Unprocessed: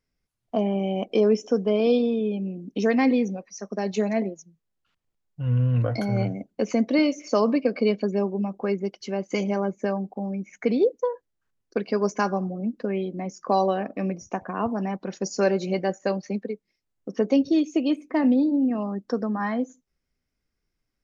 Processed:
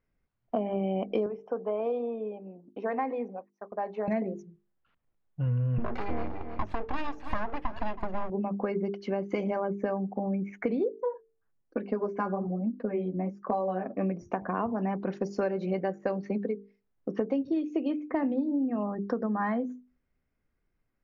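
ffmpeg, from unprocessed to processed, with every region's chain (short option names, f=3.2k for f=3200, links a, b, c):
-filter_complex "[0:a]asettb=1/sr,asplit=3[a][b][c];[a]atrim=end=1.264[d];[b]atrim=start=1.26:end=4.08,asetpts=PTS-STARTPTS,afade=t=in:d=0.004:c=qsin,afade=t=out:st=2.816:d=0.004:c=qsin,bandpass=f=920:t=q:w=1.8,agate=range=-33dB:threshold=-53dB:ratio=3:release=100:detection=peak[e];[c]atrim=start=4.076[f];[d][e]acrossfade=d=0.004:c1=hsin:c2=qsin[g];[g][f]acrossfade=d=0.004:c1=qsin:c2=hsin,asettb=1/sr,asplit=3[h][i][j];[h]atrim=end=5.784[k];[i]atrim=start=5.78:end=8.3,asetpts=PTS-STARTPTS,afade=t=in:d=0.004:c=qsin,afade=t=out:st=2.516:d=0.004:c=qsin,aecho=1:1:1.8:0.5,atrim=end_sample=111132,aeval=exprs='abs(val(0))':c=same,aecho=1:1:321:0.141,atrim=end_sample=111132[l];[j]atrim=start=8.296[m];[k][l]acrossfade=d=0.004:c1=hsin:c2=qsin[n];[n][m]acrossfade=d=0.004:c1=qsin:c2=hsin,asettb=1/sr,asplit=3[o][p][q];[o]atrim=end=10.894[r];[p]atrim=start=10.89:end=14.01,asetpts=PTS-STARTPTS,afade=t=in:d=0.004:c=qsin,afade=t=out:st=3.116:d=0.004:c=qsin,lowpass=f=1.7k:p=1,flanger=delay=3.4:depth=7.3:regen=3:speed=1.1:shape=sinusoidal[s];[q]atrim=start=14.006[t];[r][s]acrossfade=d=0.004:c1=hsin:c2=qsin[u];[u][t]acrossfade=d=0.004:c1=qsin:c2=hsin,lowpass=2k,bandreject=f=50:t=h:w=6,bandreject=f=100:t=h:w=6,bandreject=f=150:t=h:w=6,bandreject=f=200:t=h:w=6,bandreject=f=250:t=h:w=6,bandreject=f=300:t=h:w=6,bandreject=f=350:t=h:w=6,bandreject=f=400:t=h:w=6,bandreject=f=450:t=h:w=6,acompressor=threshold=-29dB:ratio=6,volume=3dB"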